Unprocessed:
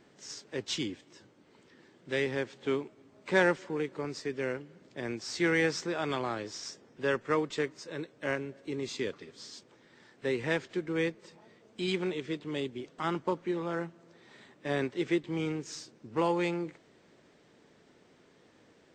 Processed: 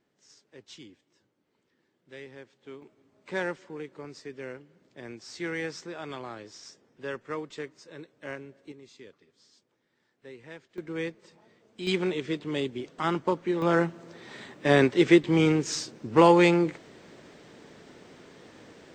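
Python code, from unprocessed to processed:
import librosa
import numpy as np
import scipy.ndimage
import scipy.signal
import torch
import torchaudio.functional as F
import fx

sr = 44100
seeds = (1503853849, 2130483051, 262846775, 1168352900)

y = fx.gain(x, sr, db=fx.steps((0.0, -14.0), (2.82, -6.0), (8.72, -15.0), (10.78, -2.5), (11.87, 4.5), (13.62, 11.0)))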